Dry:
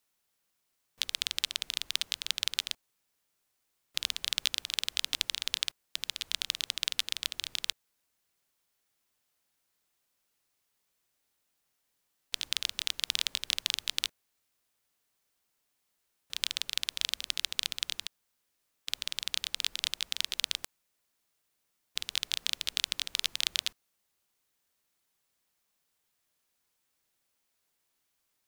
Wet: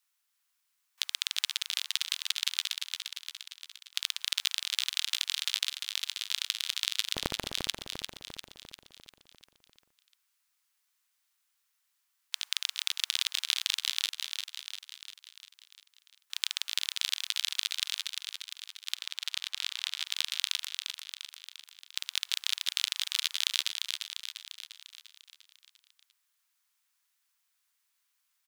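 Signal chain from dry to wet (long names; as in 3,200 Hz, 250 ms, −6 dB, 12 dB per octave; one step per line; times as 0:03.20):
high-pass filter 1,000 Hz 24 dB per octave
0:07.14–0:07.55: sample-rate reduction 3,800 Hz, jitter 0%
0:18.94–0:20.05: high-shelf EQ 5,900 Hz −9 dB
repeating echo 348 ms, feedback 56%, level −6 dB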